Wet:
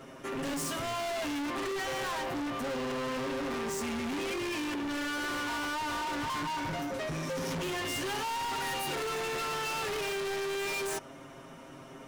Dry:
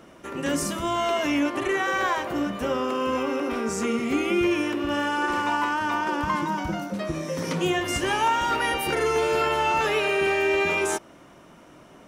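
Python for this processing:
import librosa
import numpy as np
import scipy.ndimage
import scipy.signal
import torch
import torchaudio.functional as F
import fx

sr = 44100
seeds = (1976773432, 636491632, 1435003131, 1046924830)

y = x + 0.94 * np.pad(x, (int(7.5 * sr / 1000.0), 0))[:len(x)]
y = np.clip(10.0 ** (31.5 / 20.0) * y, -1.0, 1.0) / 10.0 ** (31.5 / 20.0)
y = y * librosa.db_to_amplitude(-1.5)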